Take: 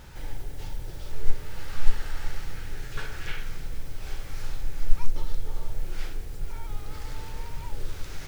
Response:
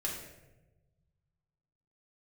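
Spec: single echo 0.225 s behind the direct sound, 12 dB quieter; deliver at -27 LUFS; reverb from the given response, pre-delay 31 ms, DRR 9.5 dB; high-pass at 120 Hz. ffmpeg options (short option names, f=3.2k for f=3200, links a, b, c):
-filter_complex "[0:a]highpass=120,aecho=1:1:225:0.251,asplit=2[a][b];[1:a]atrim=start_sample=2205,adelay=31[c];[b][c]afir=irnorm=-1:irlink=0,volume=-12.5dB[d];[a][d]amix=inputs=2:normalize=0,volume=15.5dB"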